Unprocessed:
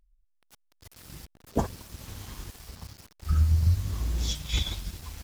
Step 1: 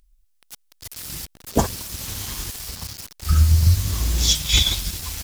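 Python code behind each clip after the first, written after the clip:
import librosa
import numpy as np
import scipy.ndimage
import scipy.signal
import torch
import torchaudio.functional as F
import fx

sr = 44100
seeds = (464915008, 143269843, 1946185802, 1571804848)

y = fx.high_shelf(x, sr, hz=2400.0, db=11.0)
y = y * librosa.db_to_amplitude(7.0)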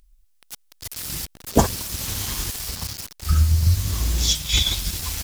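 y = fx.rider(x, sr, range_db=3, speed_s=0.5)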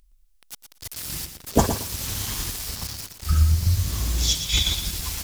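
y = fx.echo_feedback(x, sr, ms=117, feedback_pct=19, wet_db=-9)
y = y * librosa.db_to_amplitude(-2.0)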